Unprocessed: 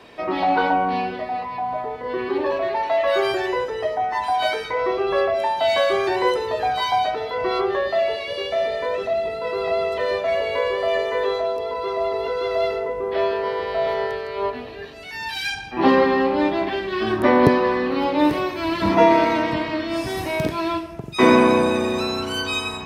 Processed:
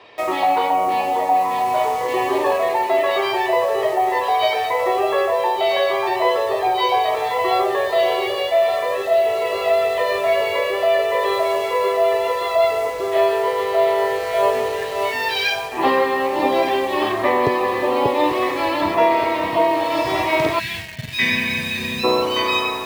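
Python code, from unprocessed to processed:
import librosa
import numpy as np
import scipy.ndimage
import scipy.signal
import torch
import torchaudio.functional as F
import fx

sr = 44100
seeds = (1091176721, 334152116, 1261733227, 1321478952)

p1 = fx.bandpass_edges(x, sr, low_hz=110.0, high_hz=4300.0)
p2 = fx.peak_eq(p1, sr, hz=210.0, db=-14.5, octaves=1.3)
p3 = fx.notch(p2, sr, hz=1500.0, q=5.6)
p4 = p3 + fx.echo_alternate(p3, sr, ms=587, hz=1000.0, feedback_pct=55, wet_db=-3.0, dry=0)
p5 = fx.spec_box(p4, sr, start_s=20.59, length_s=1.45, low_hz=250.0, high_hz=1500.0, gain_db=-23)
p6 = fx.quant_dither(p5, sr, seeds[0], bits=6, dither='none')
p7 = p5 + (p6 * 10.0 ** (-4.0 / 20.0))
y = fx.rider(p7, sr, range_db=4, speed_s=0.5)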